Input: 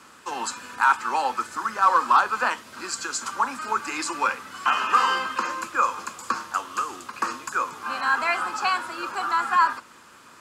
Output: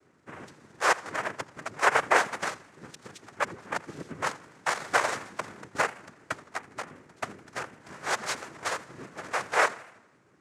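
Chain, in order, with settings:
adaptive Wiener filter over 41 samples
cochlear-implant simulation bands 3
feedback echo with a swinging delay time 82 ms, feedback 55%, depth 153 cents, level −20 dB
level −4 dB

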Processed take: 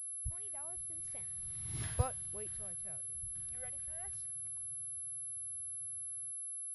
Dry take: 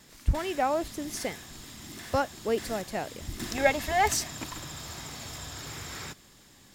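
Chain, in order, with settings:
source passing by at 0:01.82, 28 m/s, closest 1.8 metres
low shelf with overshoot 170 Hz +10.5 dB, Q 3
switching amplifier with a slow clock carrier 11,000 Hz
level −2 dB

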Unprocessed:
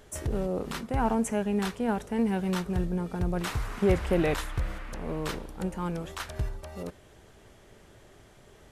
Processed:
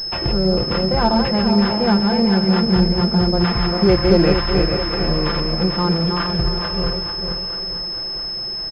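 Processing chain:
feedback delay that plays each chunk backwards 222 ms, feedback 61%, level −4 dB
comb filter 5.8 ms, depth 67%
in parallel at +2 dB: downward compressor, threshold −32 dBFS, peak gain reduction 16 dB
on the sum: feedback echo with a high-pass in the loop 663 ms, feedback 53%, high-pass 380 Hz, level −10.5 dB
switching amplifier with a slow clock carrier 5,200 Hz
level +5 dB

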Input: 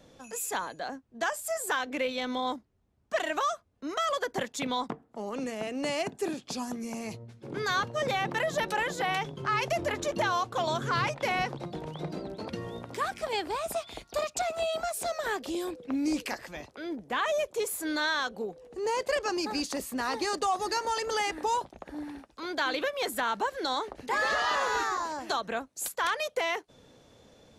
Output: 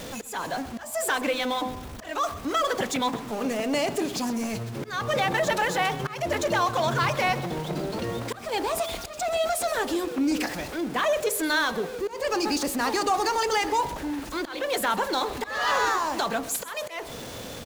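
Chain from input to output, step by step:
converter with a step at zero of −37 dBFS
phase-vocoder stretch with locked phases 0.64×
hum removal 50.82 Hz, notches 24
in parallel at −9 dB: hard clipping −29 dBFS, distortion −10 dB
on the sum: volume swells 256 ms
on a send: repeating echo 129 ms, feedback 40%, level −17 dB
on the sum: level +3 dB

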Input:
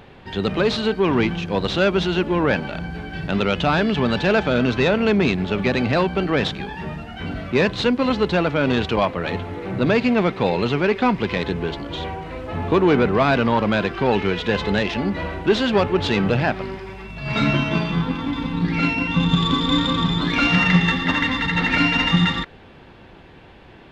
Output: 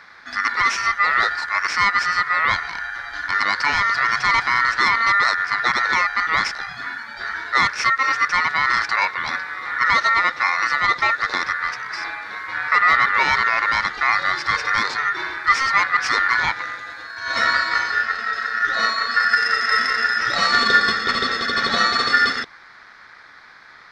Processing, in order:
flat-topped bell 1,200 Hz −10.5 dB 1.1 octaves
ring modulation 1,600 Hz
level +3.5 dB

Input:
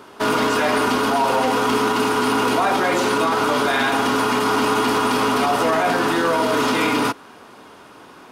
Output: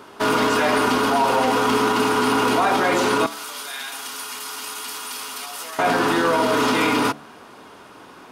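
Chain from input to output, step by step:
0:03.26–0:05.79: first-order pre-emphasis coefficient 0.97
hum removal 73.86 Hz, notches 10

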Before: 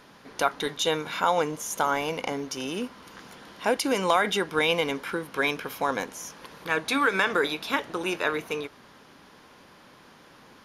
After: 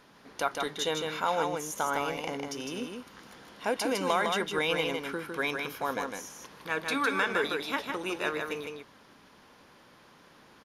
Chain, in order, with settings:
single-tap delay 156 ms −4.5 dB
level −5.5 dB

